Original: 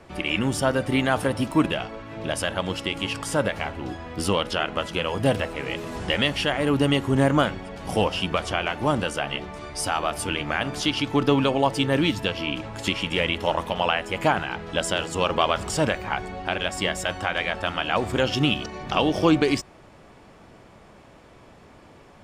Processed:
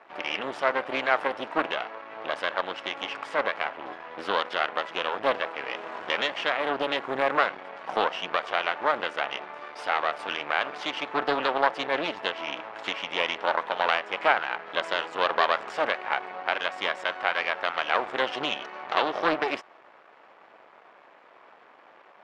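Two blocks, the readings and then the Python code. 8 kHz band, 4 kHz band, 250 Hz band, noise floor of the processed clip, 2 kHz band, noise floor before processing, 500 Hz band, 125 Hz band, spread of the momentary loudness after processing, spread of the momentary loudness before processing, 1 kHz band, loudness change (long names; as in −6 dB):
below −15 dB, −4.5 dB, −14.0 dB, −54 dBFS, 0.0 dB, −50 dBFS, −4.0 dB, −25.0 dB, 8 LU, 8 LU, +0.5 dB, −3.5 dB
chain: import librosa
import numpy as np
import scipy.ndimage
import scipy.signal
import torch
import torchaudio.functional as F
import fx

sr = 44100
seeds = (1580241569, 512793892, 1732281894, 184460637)

y = np.maximum(x, 0.0)
y = fx.bandpass_edges(y, sr, low_hz=670.0, high_hz=2100.0)
y = fx.doppler_dist(y, sr, depth_ms=0.19)
y = y * 10.0 ** (6.0 / 20.0)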